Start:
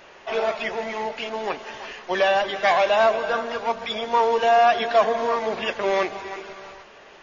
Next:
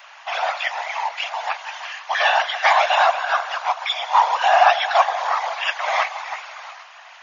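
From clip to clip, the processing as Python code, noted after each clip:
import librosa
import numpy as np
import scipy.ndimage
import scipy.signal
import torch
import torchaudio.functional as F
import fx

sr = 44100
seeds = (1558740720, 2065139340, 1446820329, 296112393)

y = fx.whisperise(x, sr, seeds[0])
y = scipy.signal.sosfilt(scipy.signal.butter(8, 710.0, 'highpass', fs=sr, output='sos'), y)
y = F.gain(torch.from_numpy(y), 5.5).numpy()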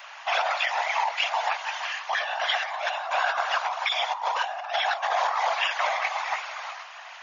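y = fx.over_compress(x, sr, threshold_db=-24.0, ratio=-1.0)
y = F.gain(torch.from_numpy(y), -3.0).numpy()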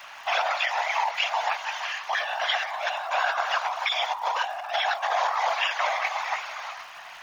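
y = fx.dmg_crackle(x, sr, seeds[1], per_s=390.0, level_db=-44.0)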